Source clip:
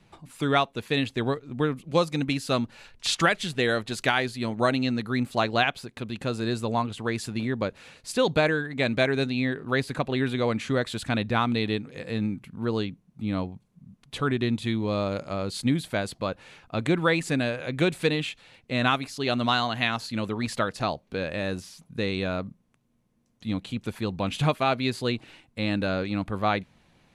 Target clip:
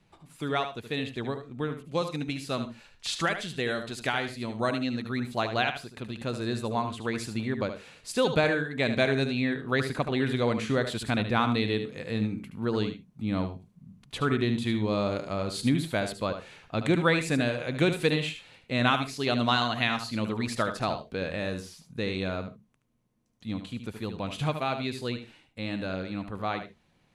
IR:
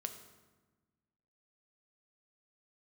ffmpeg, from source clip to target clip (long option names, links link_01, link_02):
-filter_complex "[0:a]dynaudnorm=framelen=950:gausssize=13:maxgain=7dB,asplit=2[link_01][link_02];[1:a]atrim=start_sample=2205,atrim=end_sample=3528,adelay=74[link_03];[link_02][link_03]afir=irnorm=-1:irlink=0,volume=-6.5dB[link_04];[link_01][link_04]amix=inputs=2:normalize=0,volume=-6.5dB"